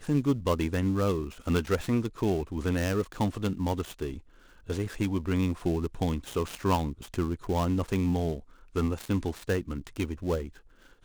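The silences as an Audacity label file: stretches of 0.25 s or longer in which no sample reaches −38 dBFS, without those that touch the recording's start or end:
4.190000	4.690000	silence
8.400000	8.750000	silence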